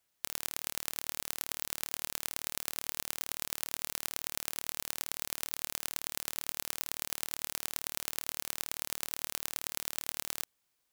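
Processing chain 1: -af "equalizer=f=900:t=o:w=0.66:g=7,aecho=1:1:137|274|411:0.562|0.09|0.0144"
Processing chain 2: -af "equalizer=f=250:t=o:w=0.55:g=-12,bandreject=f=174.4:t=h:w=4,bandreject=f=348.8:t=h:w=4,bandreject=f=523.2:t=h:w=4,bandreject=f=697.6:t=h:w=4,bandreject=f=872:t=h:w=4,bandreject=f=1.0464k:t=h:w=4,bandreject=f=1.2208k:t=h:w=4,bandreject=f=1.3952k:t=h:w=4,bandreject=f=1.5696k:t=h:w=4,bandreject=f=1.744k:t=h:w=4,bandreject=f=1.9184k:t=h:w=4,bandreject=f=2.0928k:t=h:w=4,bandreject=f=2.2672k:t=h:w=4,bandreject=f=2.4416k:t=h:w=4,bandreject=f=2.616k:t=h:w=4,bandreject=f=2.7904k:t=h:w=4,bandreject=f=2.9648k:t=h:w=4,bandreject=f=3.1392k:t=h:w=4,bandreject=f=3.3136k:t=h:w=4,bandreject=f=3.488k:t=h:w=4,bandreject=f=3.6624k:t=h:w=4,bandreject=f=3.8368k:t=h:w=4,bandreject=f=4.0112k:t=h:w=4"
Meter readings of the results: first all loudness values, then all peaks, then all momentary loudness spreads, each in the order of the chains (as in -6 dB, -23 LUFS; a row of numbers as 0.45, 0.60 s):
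-35.0, -36.0 LUFS; -4.5, -5.0 dBFS; 0, 1 LU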